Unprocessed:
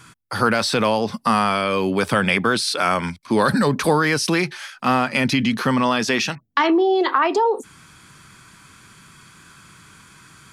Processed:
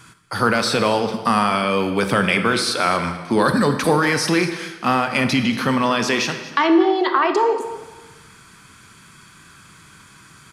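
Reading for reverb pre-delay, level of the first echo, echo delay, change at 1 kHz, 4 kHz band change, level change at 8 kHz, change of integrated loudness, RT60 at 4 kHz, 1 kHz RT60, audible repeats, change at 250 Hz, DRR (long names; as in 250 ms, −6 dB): 24 ms, −16.5 dB, 234 ms, +0.5 dB, +0.5 dB, +0.5 dB, +1.0 dB, 1.0 s, 1.3 s, 1, +1.0 dB, 7.0 dB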